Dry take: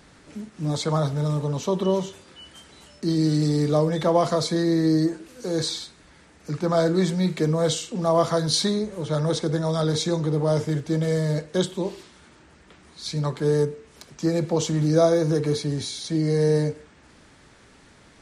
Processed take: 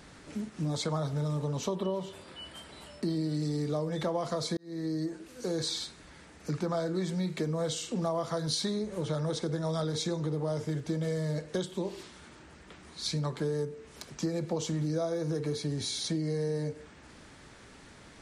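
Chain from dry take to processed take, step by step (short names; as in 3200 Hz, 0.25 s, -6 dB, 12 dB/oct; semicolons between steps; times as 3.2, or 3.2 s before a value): 1.75–3.37 thirty-one-band EQ 630 Hz +5 dB, 1000 Hz +3 dB, 6300 Hz -10 dB; 4.57–5.69 fade in linear; compressor 6:1, threshold -29 dBFS, peak gain reduction 15 dB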